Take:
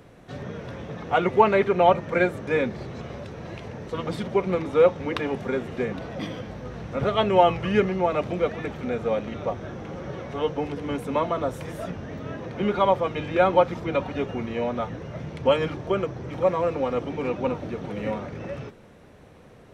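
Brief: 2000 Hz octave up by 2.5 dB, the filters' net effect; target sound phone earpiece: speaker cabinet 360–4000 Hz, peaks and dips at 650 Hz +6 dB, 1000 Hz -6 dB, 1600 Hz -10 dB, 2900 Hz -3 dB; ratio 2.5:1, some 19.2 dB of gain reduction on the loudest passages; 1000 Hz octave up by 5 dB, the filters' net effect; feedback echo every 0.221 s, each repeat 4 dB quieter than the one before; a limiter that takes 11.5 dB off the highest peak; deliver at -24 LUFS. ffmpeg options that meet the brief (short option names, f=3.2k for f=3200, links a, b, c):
-af "equalizer=f=1k:t=o:g=7,equalizer=f=2k:t=o:g=7,acompressor=threshold=-37dB:ratio=2.5,alimiter=level_in=2.5dB:limit=-24dB:level=0:latency=1,volume=-2.5dB,highpass=360,equalizer=f=650:t=q:w=4:g=6,equalizer=f=1k:t=q:w=4:g=-6,equalizer=f=1.6k:t=q:w=4:g=-10,equalizer=f=2.9k:t=q:w=4:g=-3,lowpass=f=4k:w=0.5412,lowpass=f=4k:w=1.3066,aecho=1:1:221|442|663|884|1105|1326|1547|1768|1989:0.631|0.398|0.25|0.158|0.0994|0.0626|0.0394|0.0249|0.0157,volume=13.5dB"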